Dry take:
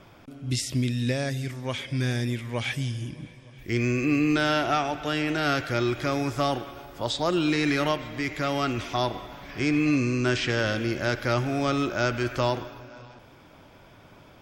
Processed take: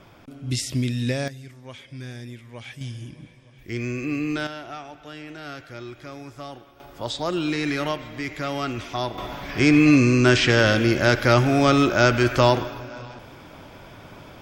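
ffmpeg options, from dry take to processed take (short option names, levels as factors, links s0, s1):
-af "asetnsamples=n=441:p=0,asendcmd='1.28 volume volume -10dB;2.81 volume volume -3.5dB;4.47 volume volume -12dB;6.8 volume volume -1dB;9.18 volume volume 8dB',volume=1.19"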